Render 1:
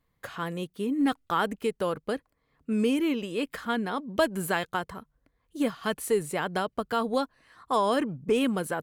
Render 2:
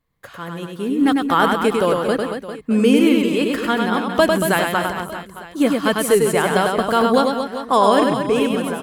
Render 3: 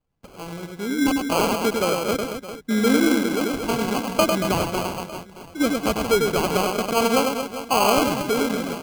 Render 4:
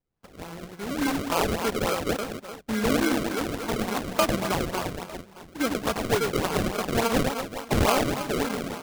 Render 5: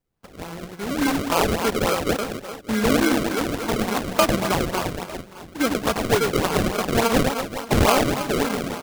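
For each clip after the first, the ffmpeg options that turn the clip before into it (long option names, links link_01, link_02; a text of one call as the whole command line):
ffmpeg -i in.wav -filter_complex "[0:a]dynaudnorm=framelen=200:gausssize=9:maxgain=10.5dB,asplit=2[link_01][link_02];[link_02]aecho=0:1:100|230|399|618.7|904.3:0.631|0.398|0.251|0.158|0.1[link_03];[link_01][link_03]amix=inputs=2:normalize=0" out.wav
ffmpeg -i in.wav -af "acrusher=samples=24:mix=1:aa=0.000001,volume=-4.5dB" out.wav
ffmpeg -i in.wav -af "equalizer=frequency=1600:width_type=o:width=2.7:gain=6.5,acrusher=samples=29:mix=1:aa=0.000001:lfo=1:lforange=46.4:lforate=3.5,volume=-7.5dB" out.wav
ffmpeg -i in.wav -af "aecho=1:1:576:0.075,volume=4.5dB" out.wav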